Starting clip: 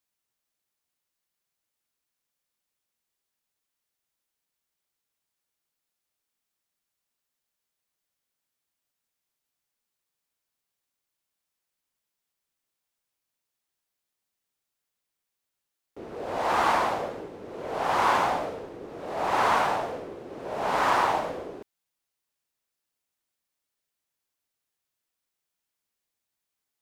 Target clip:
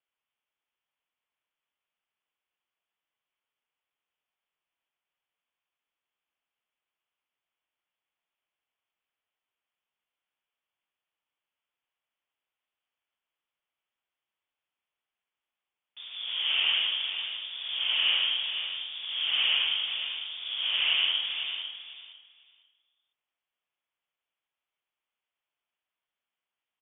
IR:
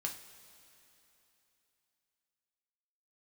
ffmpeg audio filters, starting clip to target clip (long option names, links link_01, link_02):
-filter_complex "[0:a]aexciter=amount=2.8:drive=7.5:freq=3000,asplit=2[link_01][link_02];[link_02]acompressor=threshold=-33dB:ratio=6,volume=2dB[link_03];[link_01][link_03]amix=inputs=2:normalize=0,acrossover=split=470 2300:gain=0.0891 1 0.0794[link_04][link_05][link_06];[link_04][link_05][link_06]amix=inputs=3:normalize=0,afreqshift=-140,asplit=2[link_07][link_08];[link_08]aecho=0:1:500|1000|1500:0.355|0.0639|0.0115[link_09];[link_07][link_09]amix=inputs=2:normalize=0,lowpass=frequency=3200:width_type=q:width=0.5098,lowpass=frequency=3200:width_type=q:width=0.6013,lowpass=frequency=3200:width_type=q:width=0.9,lowpass=frequency=3200:width_type=q:width=2.563,afreqshift=-3800,volume=-4dB"